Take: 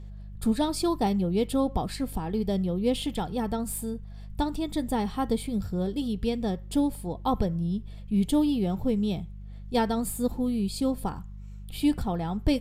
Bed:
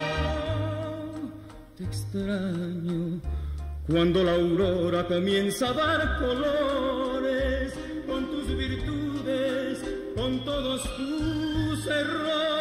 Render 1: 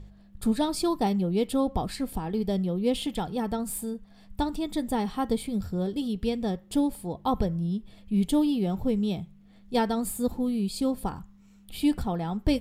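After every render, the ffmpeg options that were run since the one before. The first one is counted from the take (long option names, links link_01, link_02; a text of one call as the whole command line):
ffmpeg -i in.wav -af "bandreject=frequency=50:width_type=h:width=4,bandreject=frequency=100:width_type=h:width=4,bandreject=frequency=150:width_type=h:width=4" out.wav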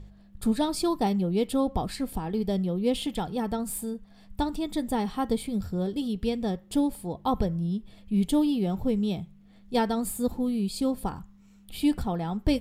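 ffmpeg -i in.wav -af anull out.wav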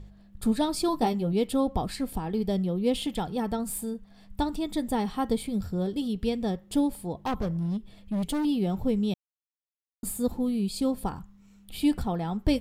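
ffmpeg -i in.wav -filter_complex "[0:a]asettb=1/sr,asplit=3[link_01][link_02][link_03];[link_01]atrim=end=0.874[link_04];[link_02]atrim=start=0.87:end=1.33,asetpts=PTS-STARTPTS,afade=type=in:duration=0.004:curve=qsin,afade=type=out:start_time=0.456:duration=0.004:curve=qsin,asplit=2[link_05][link_06];[link_06]adelay=13,volume=-6dB[link_07];[link_05][link_07]amix=inputs=2:normalize=0,atrim=end_sample=20286[link_08];[link_03]atrim=start=1.326[link_09];[link_04][link_08]acrossfade=duration=0.004:curve1=hsin:curve2=qsin[link_10];[link_10][link_09]acrossfade=duration=0.004:curve1=qsin:curve2=hsin,asettb=1/sr,asplit=3[link_11][link_12][link_13];[link_11]atrim=end=7.214[link_14];[link_12]atrim=start=7.21:end=8.45,asetpts=PTS-STARTPTS,afade=type=in:duration=0.004:curve=qsin,afade=type=out:start_time=1.236:duration=0.004:curve=qsin,asoftclip=type=hard:threshold=-25.5dB[link_15];[link_13]atrim=start=8.446[link_16];[link_14][link_15]acrossfade=duration=0.004:curve1=hsin:curve2=qsin[link_17];[link_17][link_16]acrossfade=duration=0.004:curve1=qsin:curve2=hsin,asplit=3[link_18][link_19][link_20];[link_18]atrim=end=9.14,asetpts=PTS-STARTPTS,afade=type=out:start_time=9.136:duration=0.004:curve=hsin[link_21];[link_19]atrim=start=9.14:end=10.03,asetpts=PTS-STARTPTS,volume=0[link_22];[link_20]atrim=start=10.03,asetpts=PTS-STARTPTS,afade=type=in:duration=0.004:curve=hsin[link_23];[link_21][link_22][link_23]concat=n=3:v=0:a=1" out.wav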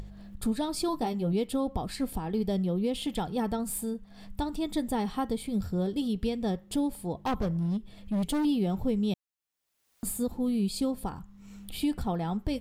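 ffmpeg -i in.wav -af "acompressor=mode=upward:threshold=-36dB:ratio=2.5,alimiter=limit=-20dB:level=0:latency=1:release=272" out.wav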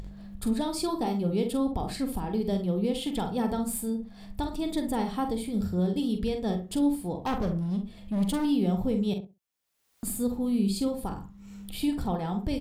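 ffmpeg -i in.wav -filter_complex "[0:a]asplit=2[link_01][link_02];[link_02]adelay=45,volume=-8dB[link_03];[link_01][link_03]amix=inputs=2:normalize=0,asplit=2[link_04][link_05];[link_05]adelay=66,lowpass=frequency=810:poles=1,volume=-6dB,asplit=2[link_06][link_07];[link_07]adelay=66,lowpass=frequency=810:poles=1,volume=0.2,asplit=2[link_08][link_09];[link_09]adelay=66,lowpass=frequency=810:poles=1,volume=0.2[link_10];[link_06][link_08][link_10]amix=inputs=3:normalize=0[link_11];[link_04][link_11]amix=inputs=2:normalize=0" out.wav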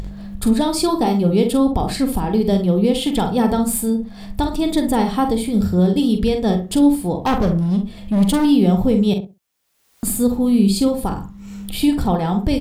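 ffmpeg -i in.wav -af "volume=11.5dB" out.wav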